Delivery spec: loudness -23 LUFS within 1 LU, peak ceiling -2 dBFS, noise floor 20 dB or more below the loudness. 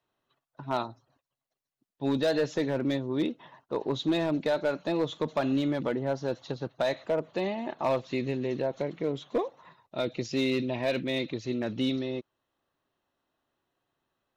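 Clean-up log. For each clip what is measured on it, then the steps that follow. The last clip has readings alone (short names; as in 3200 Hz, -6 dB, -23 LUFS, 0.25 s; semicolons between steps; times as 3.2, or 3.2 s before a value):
clipped 0.7%; flat tops at -20.0 dBFS; loudness -30.5 LUFS; peak -20.0 dBFS; loudness target -23.0 LUFS
-> clip repair -20 dBFS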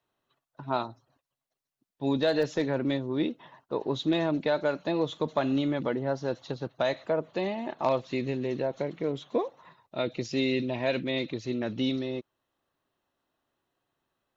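clipped 0.0%; loudness -30.0 LUFS; peak -13.5 dBFS; loudness target -23.0 LUFS
-> gain +7 dB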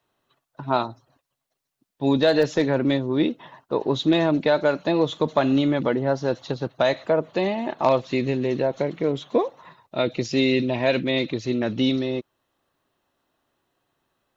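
loudness -23.0 LUFS; peak -6.5 dBFS; noise floor -81 dBFS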